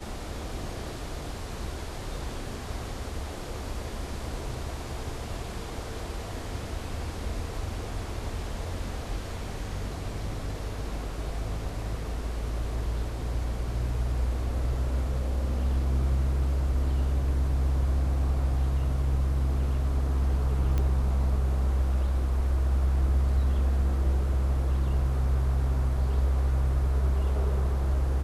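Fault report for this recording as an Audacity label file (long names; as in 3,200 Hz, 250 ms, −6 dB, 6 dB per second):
20.780000	20.780000	click −17 dBFS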